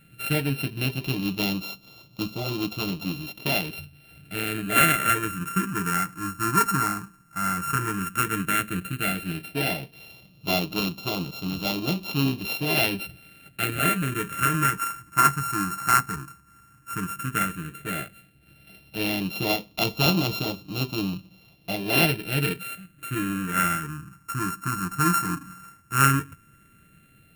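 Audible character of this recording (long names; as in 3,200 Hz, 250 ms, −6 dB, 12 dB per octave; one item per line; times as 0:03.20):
a buzz of ramps at a fixed pitch in blocks of 32 samples
phaser sweep stages 4, 0.11 Hz, lowest notch 590–1,600 Hz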